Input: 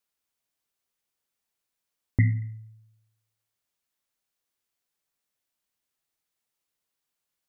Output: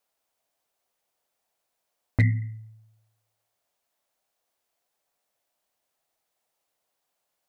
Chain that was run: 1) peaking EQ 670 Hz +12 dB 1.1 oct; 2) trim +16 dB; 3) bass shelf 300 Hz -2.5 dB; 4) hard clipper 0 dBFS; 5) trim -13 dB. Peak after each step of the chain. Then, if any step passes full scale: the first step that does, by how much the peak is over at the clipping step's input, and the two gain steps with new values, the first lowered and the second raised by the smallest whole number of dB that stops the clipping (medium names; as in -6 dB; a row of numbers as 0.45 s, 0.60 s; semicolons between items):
-9.0 dBFS, +7.0 dBFS, +5.5 dBFS, 0.0 dBFS, -13.0 dBFS; step 2, 5.5 dB; step 2 +10 dB, step 5 -7 dB